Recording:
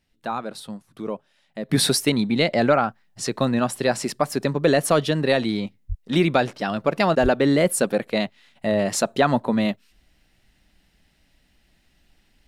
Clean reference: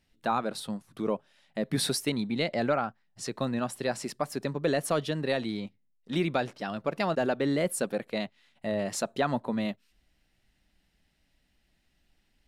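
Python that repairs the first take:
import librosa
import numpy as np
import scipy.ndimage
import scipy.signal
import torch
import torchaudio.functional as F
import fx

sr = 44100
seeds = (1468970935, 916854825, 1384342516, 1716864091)

y = fx.fix_deplosive(x, sr, at_s=(5.88, 7.22))
y = fx.gain(y, sr, db=fx.steps((0.0, 0.0), (1.69, -9.0)))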